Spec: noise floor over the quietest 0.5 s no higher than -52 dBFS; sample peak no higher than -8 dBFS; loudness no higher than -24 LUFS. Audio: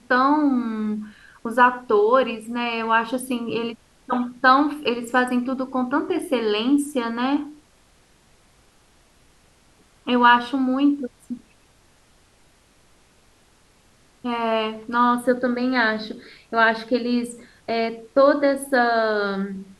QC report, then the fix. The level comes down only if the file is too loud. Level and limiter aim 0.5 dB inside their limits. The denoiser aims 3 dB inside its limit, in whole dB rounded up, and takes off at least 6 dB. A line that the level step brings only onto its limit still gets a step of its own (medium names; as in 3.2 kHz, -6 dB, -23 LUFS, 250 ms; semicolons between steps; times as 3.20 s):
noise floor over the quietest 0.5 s -57 dBFS: pass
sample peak -3.0 dBFS: fail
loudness -21.0 LUFS: fail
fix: trim -3.5 dB; peak limiter -8.5 dBFS